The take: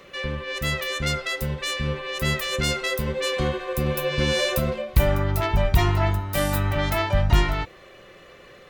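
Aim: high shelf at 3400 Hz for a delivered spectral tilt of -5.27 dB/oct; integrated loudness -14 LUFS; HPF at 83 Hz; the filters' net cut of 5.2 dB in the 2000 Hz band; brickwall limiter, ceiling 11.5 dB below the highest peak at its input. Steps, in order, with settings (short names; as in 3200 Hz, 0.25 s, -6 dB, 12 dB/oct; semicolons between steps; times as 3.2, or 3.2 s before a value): HPF 83 Hz; bell 2000 Hz -5 dB; high shelf 3400 Hz -3.5 dB; gain +16 dB; limiter -4 dBFS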